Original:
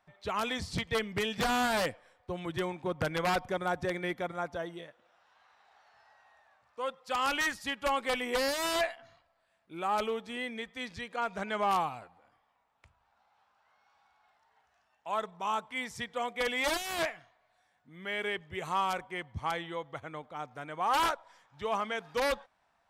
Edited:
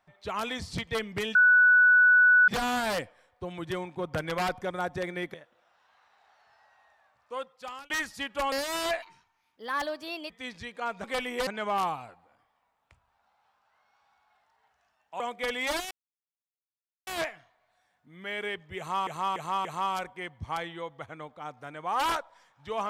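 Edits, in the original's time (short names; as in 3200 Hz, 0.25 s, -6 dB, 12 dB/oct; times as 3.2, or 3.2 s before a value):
1.35 add tone 1480 Hz -15.5 dBFS 1.13 s
4.21–4.81 cut
6.8–7.37 fade out
7.99–8.42 move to 11.4
8.92–10.66 speed 136%
15.13–16.17 cut
16.88 insert silence 1.16 s
18.59–18.88 loop, 4 plays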